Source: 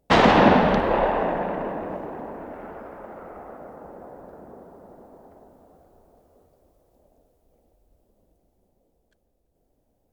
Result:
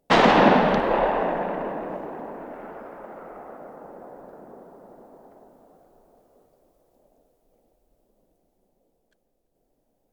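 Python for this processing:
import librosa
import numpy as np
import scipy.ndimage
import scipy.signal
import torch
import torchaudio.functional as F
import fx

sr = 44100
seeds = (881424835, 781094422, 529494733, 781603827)

y = fx.peak_eq(x, sr, hz=67.0, db=-15.0, octaves=1.2)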